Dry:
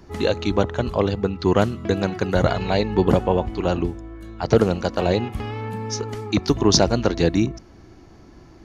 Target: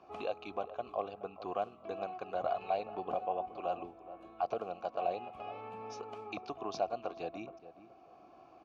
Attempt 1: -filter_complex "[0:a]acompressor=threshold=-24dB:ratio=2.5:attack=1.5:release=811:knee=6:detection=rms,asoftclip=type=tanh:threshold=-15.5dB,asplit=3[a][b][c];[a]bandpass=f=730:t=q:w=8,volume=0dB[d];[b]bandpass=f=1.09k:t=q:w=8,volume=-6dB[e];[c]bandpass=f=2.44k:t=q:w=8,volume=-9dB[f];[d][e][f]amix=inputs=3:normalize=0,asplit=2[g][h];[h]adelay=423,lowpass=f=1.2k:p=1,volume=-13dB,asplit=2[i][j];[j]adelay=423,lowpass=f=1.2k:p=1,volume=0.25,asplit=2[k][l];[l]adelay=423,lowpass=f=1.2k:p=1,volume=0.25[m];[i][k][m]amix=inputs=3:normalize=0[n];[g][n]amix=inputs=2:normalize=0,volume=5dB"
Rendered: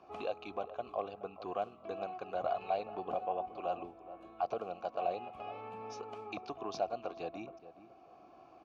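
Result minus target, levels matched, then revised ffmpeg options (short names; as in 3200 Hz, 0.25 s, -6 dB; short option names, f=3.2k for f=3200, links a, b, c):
soft clip: distortion +14 dB
-filter_complex "[0:a]acompressor=threshold=-24dB:ratio=2.5:attack=1.5:release=811:knee=6:detection=rms,asoftclip=type=tanh:threshold=-7.5dB,asplit=3[a][b][c];[a]bandpass=f=730:t=q:w=8,volume=0dB[d];[b]bandpass=f=1.09k:t=q:w=8,volume=-6dB[e];[c]bandpass=f=2.44k:t=q:w=8,volume=-9dB[f];[d][e][f]amix=inputs=3:normalize=0,asplit=2[g][h];[h]adelay=423,lowpass=f=1.2k:p=1,volume=-13dB,asplit=2[i][j];[j]adelay=423,lowpass=f=1.2k:p=1,volume=0.25,asplit=2[k][l];[l]adelay=423,lowpass=f=1.2k:p=1,volume=0.25[m];[i][k][m]amix=inputs=3:normalize=0[n];[g][n]amix=inputs=2:normalize=0,volume=5dB"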